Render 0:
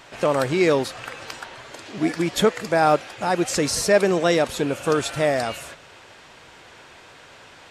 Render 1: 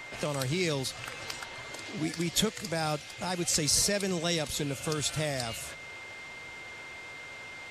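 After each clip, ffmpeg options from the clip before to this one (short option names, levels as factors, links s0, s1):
-filter_complex "[0:a]aeval=exprs='val(0)+0.00794*sin(2*PI*2100*n/s)':c=same,acrossover=split=160|3000[s0][s1][s2];[s1]acompressor=threshold=0.00631:ratio=2[s3];[s0][s3][s2]amix=inputs=3:normalize=0"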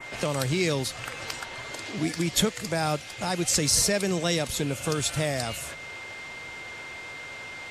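-af "adynamicequalizer=threshold=0.00562:dfrequency=4400:dqfactor=1.1:tfrequency=4400:tqfactor=1.1:attack=5:release=100:ratio=0.375:range=1.5:mode=cutabove:tftype=bell,volume=1.68"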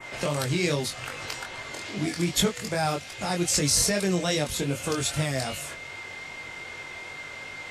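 -af "flanger=delay=20:depth=3:speed=2.5,volume=1.41"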